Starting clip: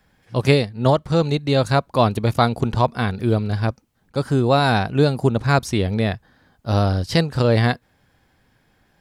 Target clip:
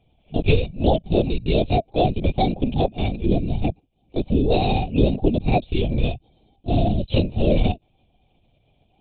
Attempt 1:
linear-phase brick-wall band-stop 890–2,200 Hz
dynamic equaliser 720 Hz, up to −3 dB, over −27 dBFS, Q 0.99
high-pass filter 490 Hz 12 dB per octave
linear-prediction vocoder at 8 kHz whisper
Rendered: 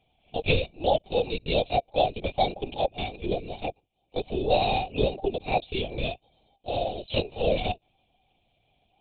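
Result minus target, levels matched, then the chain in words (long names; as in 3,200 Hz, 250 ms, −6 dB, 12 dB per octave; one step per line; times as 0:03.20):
500 Hz band +3.0 dB
linear-phase brick-wall band-stop 890–2,200 Hz
dynamic equaliser 720 Hz, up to −3 dB, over −27 dBFS, Q 0.99
linear-prediction vocoder at 8 kHz whisper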